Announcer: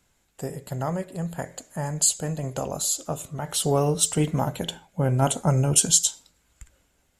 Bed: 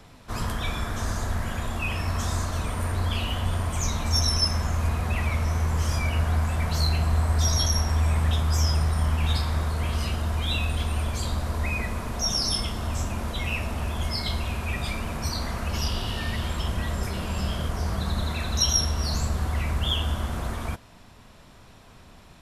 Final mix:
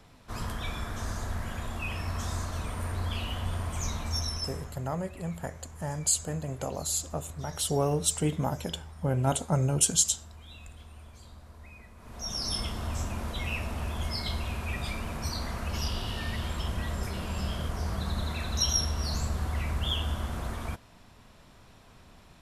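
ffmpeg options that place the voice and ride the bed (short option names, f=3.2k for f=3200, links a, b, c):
-filter_complex "[0:a]adelay=4050,volume=-5dB[a];[1:a]volume=11.5dB,afade=t=out:st=3.91:d=0.93:silence=0.158489,afade=t=in:st=11.97:d=0.66:silence=0.133352[b];[a][b]amix=inputs=2:normalize=0"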